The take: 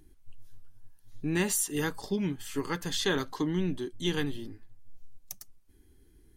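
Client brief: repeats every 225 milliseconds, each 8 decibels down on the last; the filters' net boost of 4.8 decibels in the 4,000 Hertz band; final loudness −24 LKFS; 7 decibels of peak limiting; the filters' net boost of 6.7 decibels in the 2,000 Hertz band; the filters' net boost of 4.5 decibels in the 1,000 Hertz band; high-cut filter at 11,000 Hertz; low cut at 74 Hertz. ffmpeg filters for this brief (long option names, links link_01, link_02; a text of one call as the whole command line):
ffmpeg -i in.wav -af "highpass=74,lowpass=11000,equalizer=frequency=1000:width_type=o:gain=3.5,equalizer=frequency=2000:width_type=o:gain=6.5,equalizer=frequency=4000:width_type=o:gain=3.5,alimiter=limit=-19dB:level=0:latency=1,aecho=1:1:225|450|675|900|1125:0.398|0.159|0.0637|0.0255|0.0102,volume=6.5dB" out.wav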